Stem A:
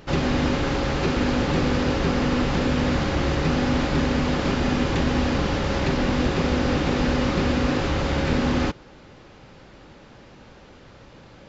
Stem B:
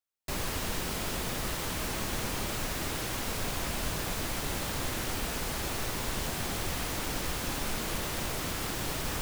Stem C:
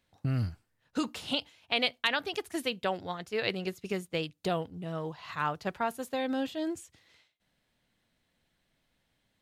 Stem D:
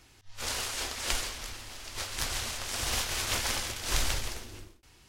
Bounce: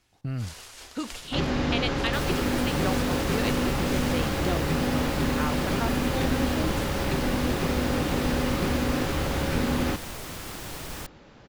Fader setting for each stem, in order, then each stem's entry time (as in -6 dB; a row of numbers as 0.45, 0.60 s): -4.0, -3.5, -1.5, -10.5 dB; 1.25, 1.85, 0.00, 0.00 s